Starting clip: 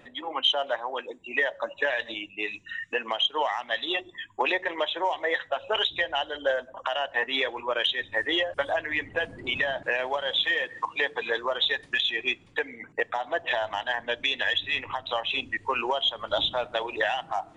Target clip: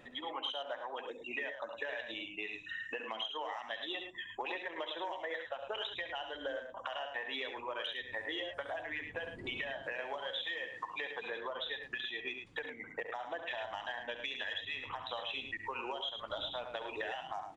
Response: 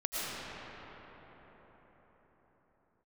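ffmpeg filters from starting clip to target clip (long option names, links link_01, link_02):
-filter_complex "[0:a]asettb=1/sr,asplit=3[link_01][link_02][link_03];[link_01]atrim=end=11.284[link_04];[link_02]atrim=start=11.28:end=12.31,asetpts=PTS-STARTPTS,afade=type=in:duration=0.004:curve=qsin,afade=type=out:start_time=1.026:duration=0.004:curve=qsin,highshelf=frequency=4600:gain=-11[link_05];[link_03]atrim=start=12.306[link_06];[link_04][link_05]acrossfade=duration=0.004:curve1=hsin:curve2=qsin[link_07];[link_07][link_06]acrossfade=duration=0.004:curve1=qsin:curve2=hsin,acompressor=threshold=-35dB:ratio=4,aecho=1:1:68|72|107:0.299|0.15|0.422,volume=-4dB"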